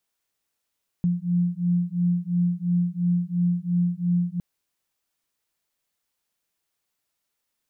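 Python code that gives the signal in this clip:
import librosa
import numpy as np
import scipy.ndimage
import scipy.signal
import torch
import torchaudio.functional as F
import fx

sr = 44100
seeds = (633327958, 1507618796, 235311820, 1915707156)

y = fx.two_tone_beats(sr, length_s=3.36, hz=174.0, beat_hz=2.9, level_db=-23.5)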